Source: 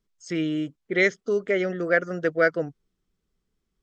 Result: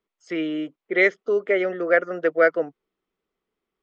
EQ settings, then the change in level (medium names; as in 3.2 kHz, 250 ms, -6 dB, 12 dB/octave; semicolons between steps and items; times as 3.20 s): three-band isolator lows -16 dB, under 290 Hz, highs -18 dB, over 3.1 kHz; bass shelf 150 Hz -6.5 dB; peaking EQ 1.6 kHz -5 dB 0.27 oct; +5.0 dB